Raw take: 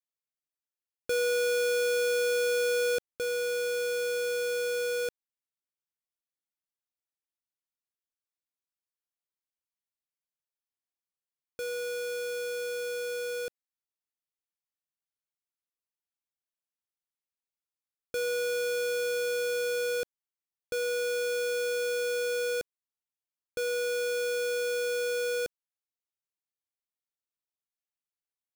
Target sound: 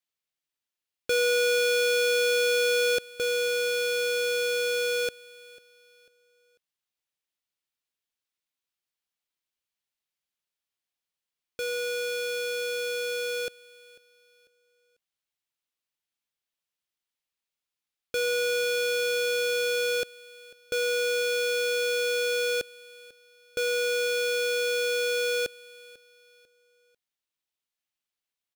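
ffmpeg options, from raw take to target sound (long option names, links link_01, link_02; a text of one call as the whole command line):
ffmpeg -i in.wav -filter_complex "[0:a]equalizer=frequency=3100:width=0.84:gain=6.5,asplit=2[link_01][link_02];[link_02]aecho=0:1:495|990|1485:0.0841|0.0303|0.0109[link_03];[link_01][link_03]amix=inputs=2:normalize=0,volume=2.5dB" out.wav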